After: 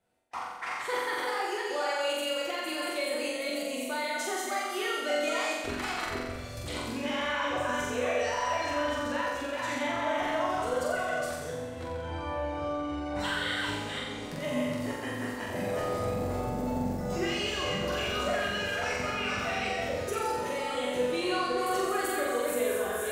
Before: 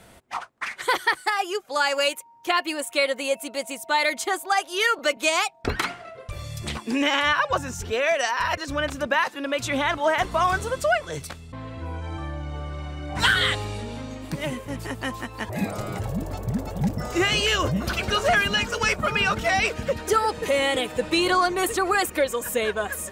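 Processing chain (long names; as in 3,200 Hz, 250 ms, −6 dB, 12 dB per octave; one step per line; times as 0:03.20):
delay that plays each chunk backwards 269 ms, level −2.5 dB
in parallel at −1.5 dB: compressor whose output falls as the input rises −27 dBFS, ratio −0.5
on the sum: parametric band 490 Hz +5.5 dB 1.7 octaves
resonators tuned to a chord E2 minor, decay 0.25 s
on a send: flutter between parallel walls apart 7.6 metres, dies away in 1.2 s
on the sum: noise gate with hold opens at −28 dBFS
level −6.5 dB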